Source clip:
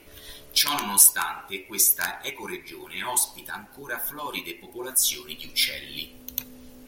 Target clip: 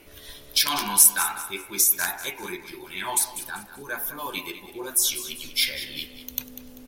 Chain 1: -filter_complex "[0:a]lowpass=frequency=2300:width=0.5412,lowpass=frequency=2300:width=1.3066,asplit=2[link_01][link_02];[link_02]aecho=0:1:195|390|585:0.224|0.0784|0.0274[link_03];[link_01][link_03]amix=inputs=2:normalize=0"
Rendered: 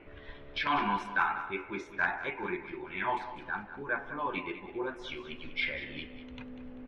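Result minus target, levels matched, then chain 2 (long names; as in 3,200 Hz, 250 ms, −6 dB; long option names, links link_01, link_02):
2,000 Hz band +10.5 dB
-filter_complex "[0:a]asplit=2[link_01][link_02];[link_02]aecho=0:1:195|390|585:0.224|0.0784|0.0274[link_03];[link_01][link_03]amix=inputs=2:normalize=0"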